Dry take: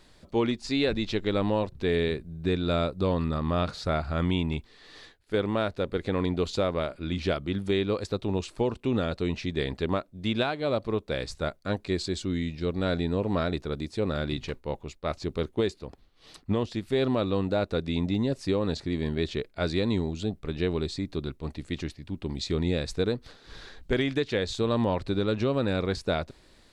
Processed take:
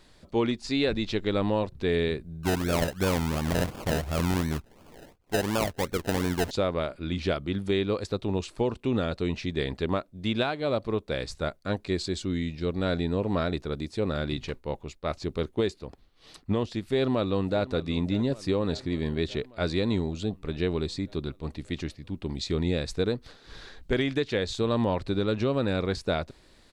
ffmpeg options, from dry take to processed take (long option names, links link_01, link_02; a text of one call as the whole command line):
ffmpeg -i in.wav -filter_complex "[0:a]asettb=1/sr,asplit=3[link_01][link_02][link_03];[link_01]atrim=end=2.434[link_04];[link_02]atrim=start=2.43:end=6.51,asetpts=PTS-STARTPTS,afade=type=in:duration=0.004:curve=qsin,afade=type=out:start_time=4.076:duration=0.004:curve=qsin,acrusher=samples=31:mix=1:aa=0.000001:lfo=1:lforange=18.6:lforate=2.8[link_05];[link_03]atrim=start=6.506[link_06];[link_04][link_05]acrossfade=duration=0.004:curve1=hsin:curve2=qsin[link_07];[link_07][link_06]acrossfade=duration=0.004:curve1=qsin:curve2=hsin,asplit=2[link_08][link_09];[link_09]afade=type=in:start_time=16.79:duration=0.01,afade=type=out:start_time=17.61:duration=0.01,aecho=0:1:590|1180|1770|2360|2950|3540|4130|4720:0.133352|0.0933465|0.0653426|0.0457398|0.0320178|0.0224125|0.0156887|0.0109821[link_10];[link_08][link_10]amix=inputs=2:normalize=0" out.wav